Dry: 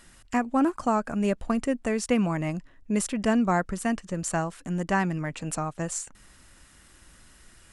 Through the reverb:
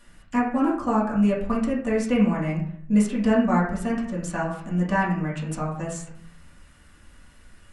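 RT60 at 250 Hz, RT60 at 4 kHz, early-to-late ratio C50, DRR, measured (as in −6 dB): 0.85 s, 0.40 s, 5.5 dB, −7.0 dB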